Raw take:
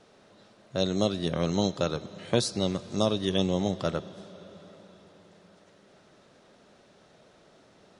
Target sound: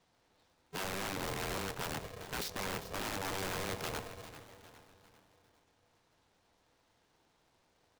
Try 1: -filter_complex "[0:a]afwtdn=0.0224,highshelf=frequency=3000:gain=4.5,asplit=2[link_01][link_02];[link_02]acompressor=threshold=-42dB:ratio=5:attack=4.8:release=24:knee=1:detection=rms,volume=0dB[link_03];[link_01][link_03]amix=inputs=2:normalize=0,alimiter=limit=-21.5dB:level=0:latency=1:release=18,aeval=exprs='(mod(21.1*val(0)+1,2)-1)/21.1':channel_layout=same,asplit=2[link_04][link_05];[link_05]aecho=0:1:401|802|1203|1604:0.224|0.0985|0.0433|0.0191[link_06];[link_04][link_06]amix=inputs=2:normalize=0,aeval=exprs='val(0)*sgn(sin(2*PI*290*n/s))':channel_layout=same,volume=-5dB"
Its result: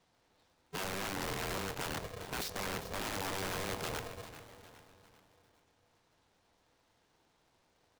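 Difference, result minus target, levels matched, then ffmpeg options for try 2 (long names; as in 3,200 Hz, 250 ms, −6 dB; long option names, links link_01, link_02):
downward compressor: peak gain reduction −9 dB
-filter_complex "[0:a]afwtdn=0.0224,highshelf=frequency=3000:gain=4.5,asplit=2[link_01][link_02];[link_02]acompressor=threshold=-53dB:ratio=5:attack=4.8:release=24:knee=1:detection=rms,volume=0dB[link_03];[link_01][link_03]amix=inputs=2:normalize=0,alimiter=limit=-21.5dB:level=0:latency=1:release=18,aeval=exprs='(mod(21.1*val(0)+1,2)-1)/21.1':channel_layout=same,asplit=2[link_04][link_05];[link_05]aecho=0:1:401|802|1203|1604:0.224|0.0985|0.0433|0.0191[link_06];[link_04][link_06]amix=inputs=2:normalize=0,aeval=exprs='val(0)*sgn(sin(2*PI*290*n/s))':channel_layout=same,volume=-5dB"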